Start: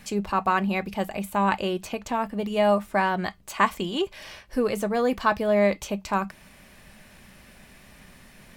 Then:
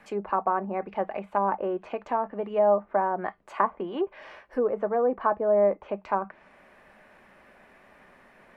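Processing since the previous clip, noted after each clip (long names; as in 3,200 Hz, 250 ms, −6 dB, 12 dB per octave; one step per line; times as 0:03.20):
treble cut that deepens with the level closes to 880 Hz, closed at −20.5 dBFS
three-way crossover with the lows and the highs turned down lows −18 dB, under 310 Hz, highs −21 dB, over 2,000 Hz
level +2 dB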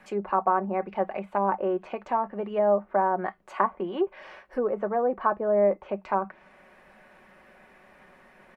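comb filter 5.4 ms, depth 35%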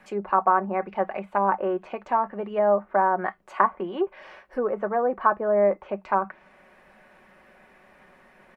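dynamic equaliser 1,500 Hz, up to +6 dB, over −38 dBFS, Q 0.86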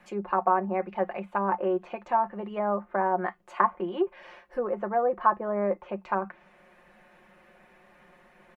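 comb filter 5.7 ms, depth 56%
level −3.5 dB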